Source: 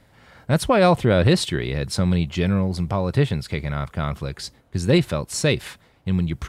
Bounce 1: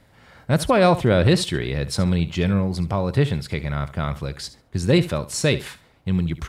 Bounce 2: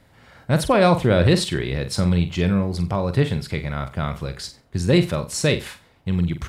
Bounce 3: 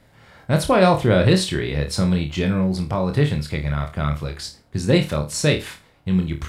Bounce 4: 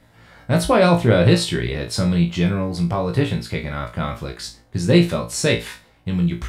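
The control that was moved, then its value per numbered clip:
flutter between parallel walls, walls apart: 12, 7.8, 4.6, 3 metres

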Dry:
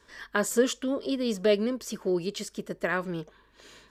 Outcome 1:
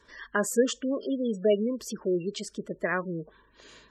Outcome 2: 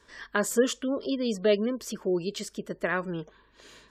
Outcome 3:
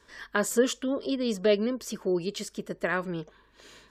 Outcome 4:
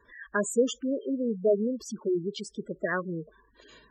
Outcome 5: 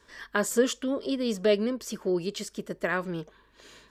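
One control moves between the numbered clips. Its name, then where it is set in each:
gate on every frequency bin, under each frame's peak: −20, −35, −45, −10, −60 decibels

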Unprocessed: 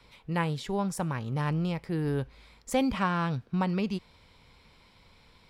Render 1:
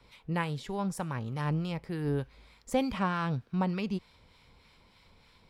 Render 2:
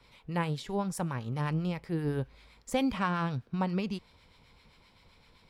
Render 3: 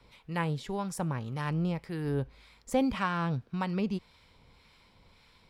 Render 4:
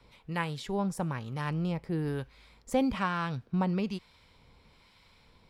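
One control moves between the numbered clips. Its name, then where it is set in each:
two-band tremolo in antiphase, speed: 3.3, 7.7, 1.8, 1.1 Hertz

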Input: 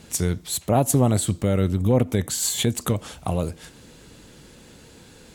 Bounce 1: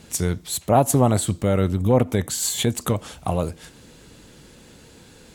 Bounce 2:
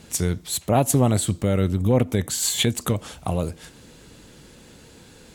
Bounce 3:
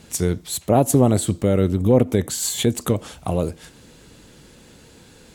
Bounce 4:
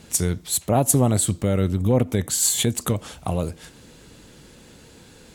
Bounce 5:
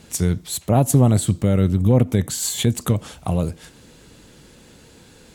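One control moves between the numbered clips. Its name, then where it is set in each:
dynamic equaliser, frequency: 970, 2,500, 380, 9,700, 140 Hertz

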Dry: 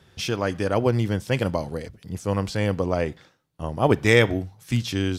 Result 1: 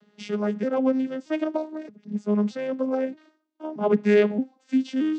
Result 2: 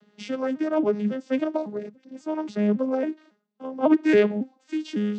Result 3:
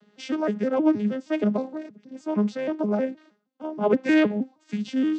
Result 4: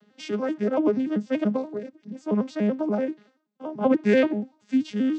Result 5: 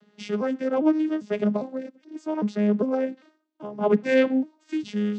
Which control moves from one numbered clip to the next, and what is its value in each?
vocoder with an arpeggio as carrier, a note every: 625, 275, 157, 96, 402 milliseconds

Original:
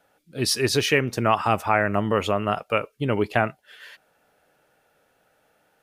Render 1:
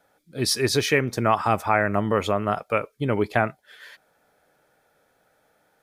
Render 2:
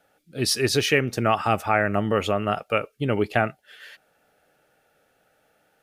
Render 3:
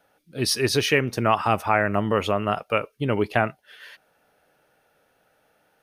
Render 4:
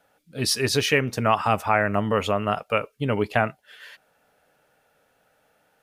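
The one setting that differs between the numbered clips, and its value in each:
notch filter, centre frequency: 2,800, 1,000, 7,400, 350 Hertz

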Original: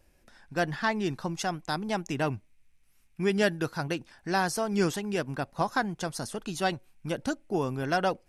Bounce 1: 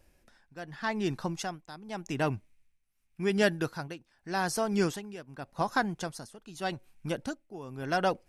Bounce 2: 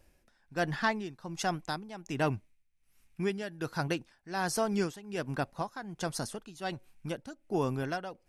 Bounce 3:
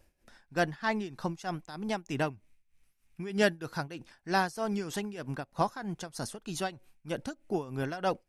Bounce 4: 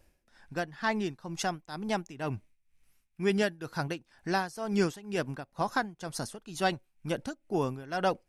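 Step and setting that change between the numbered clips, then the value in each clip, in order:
amplitude tremolo, speed: 0.86, 1.3, 3.2, 2.1 Hertz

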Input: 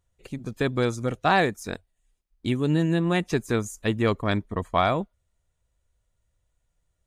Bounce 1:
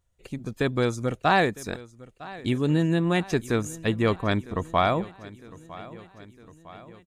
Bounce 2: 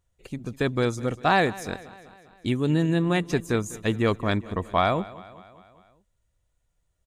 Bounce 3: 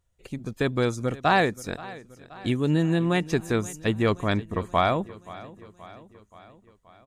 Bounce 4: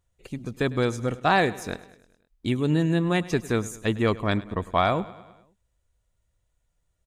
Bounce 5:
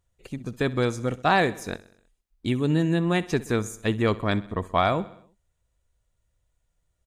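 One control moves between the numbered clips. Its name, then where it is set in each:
repeating echo, delay time: 956, 200, 527, 103, 64 milliseconds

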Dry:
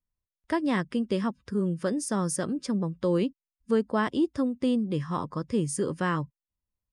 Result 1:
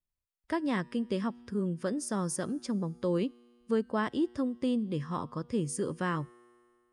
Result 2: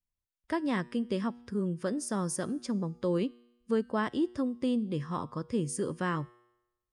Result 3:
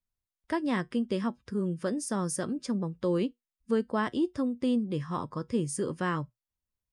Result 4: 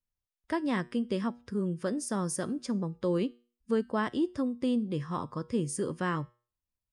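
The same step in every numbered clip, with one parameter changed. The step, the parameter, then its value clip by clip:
tuned comb filter, decay: 2.2, 0.93, 0.15, 0.39 seconds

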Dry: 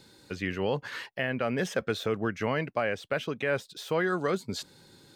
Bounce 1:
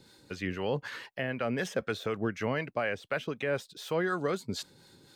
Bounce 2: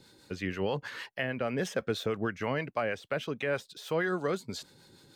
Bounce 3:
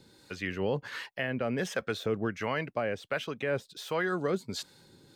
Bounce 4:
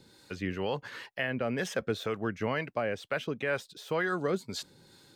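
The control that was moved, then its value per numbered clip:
two-band tremolo in antiphase, speed: 4, 6.3, 1.4, 2.1 Hertz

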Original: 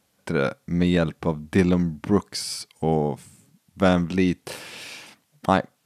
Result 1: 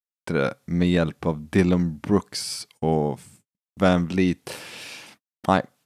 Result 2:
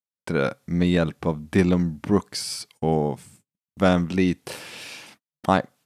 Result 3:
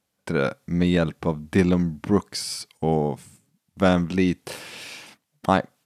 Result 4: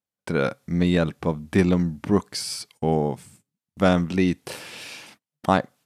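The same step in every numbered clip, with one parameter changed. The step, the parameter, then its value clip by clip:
noise gate, range: −58, −39, −9, −26 decibels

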